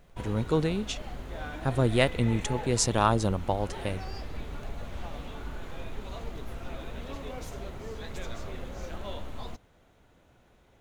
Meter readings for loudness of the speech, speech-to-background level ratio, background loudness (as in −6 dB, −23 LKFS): −28.0 LKFS, 12.5 dB, −40.5 LKFS